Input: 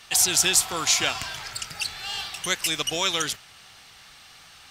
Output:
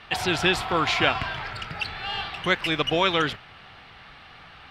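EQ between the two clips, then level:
high-frequency loss of the air 430 metres
+8.5 dB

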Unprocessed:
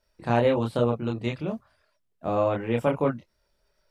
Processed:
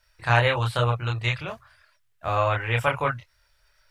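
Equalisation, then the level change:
drawn EQ curve 120 Hz 0 dB, 210 Hz −23 dB, 1,600 Hz +6 dB, 4,900 Hz +2 dB
+6.5 dB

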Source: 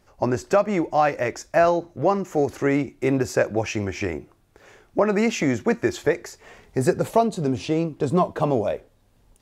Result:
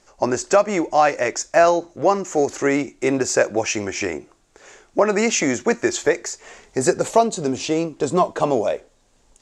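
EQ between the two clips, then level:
low-pass with resonance 7,200 Hz, resonance Q 3.1
parametric band 79 Hz −11 dB 2 octaves
parametric band 160 Hz −3 dB 1.1 octaves
+4.0 dB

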